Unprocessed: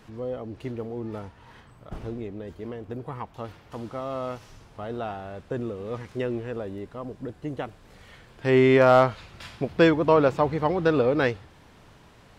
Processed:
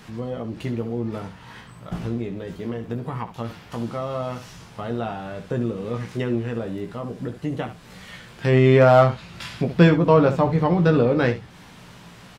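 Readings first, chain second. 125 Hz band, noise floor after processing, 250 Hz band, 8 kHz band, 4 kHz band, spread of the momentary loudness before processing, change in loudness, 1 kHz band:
+9.5 dB, -46 dBFS, +5.0 dB, n/a, +2.5 dB, 20 LU, +3.0 dB, +2.0 dB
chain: bell 170 Hz +11.5 dB 0.86 oct; early reflections 17 ms -5.5 dB, 69 ms -11.5 dB; mismatched tape noise reduction encoder only

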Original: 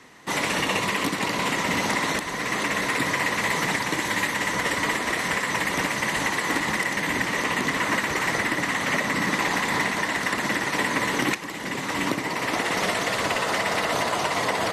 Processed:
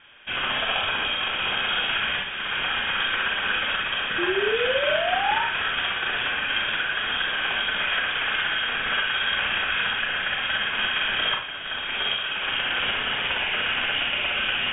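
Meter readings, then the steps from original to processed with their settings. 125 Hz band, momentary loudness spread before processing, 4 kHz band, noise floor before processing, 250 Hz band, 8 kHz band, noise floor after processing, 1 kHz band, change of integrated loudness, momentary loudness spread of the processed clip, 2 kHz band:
-10.0 dB, 3 LU, +6.5 dB, -31 dBFS, -11.5 dB, under -40 dB, -31 dBFS, -3.0 dB, +0.5 dB, 3 LU, +1.0 dB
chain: inverted band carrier 3500 Hz; painted sound rise, 4.18–5.44, 340–950 Hz -25 dBFS; Schroeder reverb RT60 0.37 s, combs from 29 ms, DRR 0.5 dB; gain -3 dB

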